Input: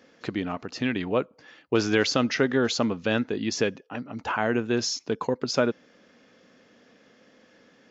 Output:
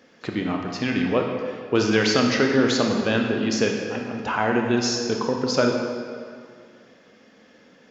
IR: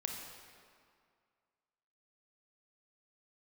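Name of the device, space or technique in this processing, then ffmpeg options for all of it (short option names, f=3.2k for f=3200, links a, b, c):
stairwell: -filter_complex "[1:a]atrim=start_sample=2205[a];[0:a][a]afir=irnorm=-1:irlink=0,volume=3.5dB"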